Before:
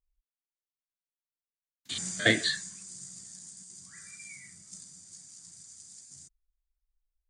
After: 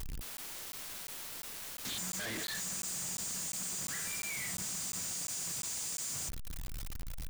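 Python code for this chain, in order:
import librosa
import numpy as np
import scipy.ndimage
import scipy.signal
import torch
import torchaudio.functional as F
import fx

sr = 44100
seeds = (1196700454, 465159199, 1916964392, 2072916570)

y = np.sign(x) * np.sqrt(np.mean(np.square(x)))
y = fx.buffer_crackle(y, sr, first_s=0.37, period_s=0.35, block=512, kind='zero')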